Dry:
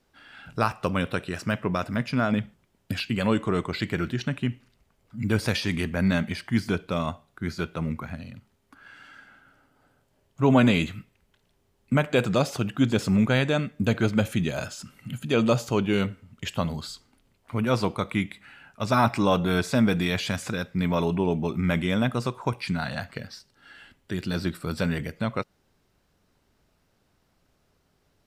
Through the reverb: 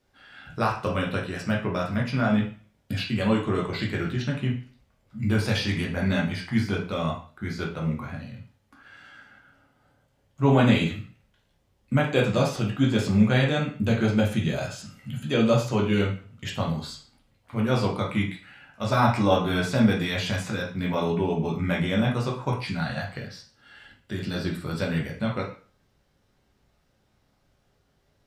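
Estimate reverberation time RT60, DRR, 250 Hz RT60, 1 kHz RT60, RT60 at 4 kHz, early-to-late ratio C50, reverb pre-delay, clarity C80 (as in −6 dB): 0.40 s, −2.0 dB, 0.40 s, 0.40 s, 0.40 s, 7.0 dB, 5 ms, 13.0 dB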